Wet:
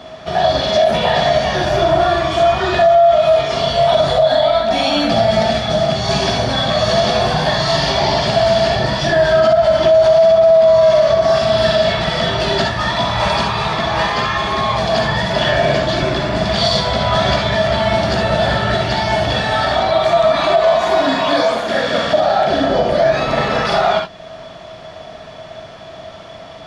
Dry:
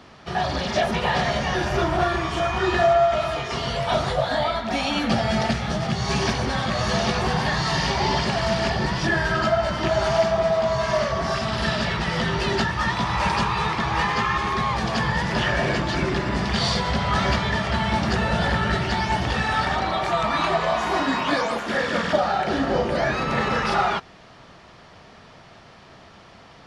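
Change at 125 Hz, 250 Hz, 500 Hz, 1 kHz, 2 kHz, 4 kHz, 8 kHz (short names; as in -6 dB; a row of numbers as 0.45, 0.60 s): +4.0, +3.5, +12.0, +6.5, +4.0, +9.0, +4.0 dB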